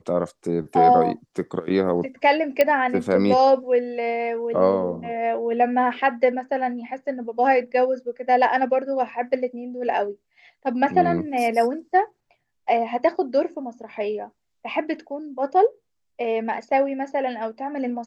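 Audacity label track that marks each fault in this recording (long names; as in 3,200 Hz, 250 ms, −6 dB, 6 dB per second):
2.610000	2.610000	click −6 dBFS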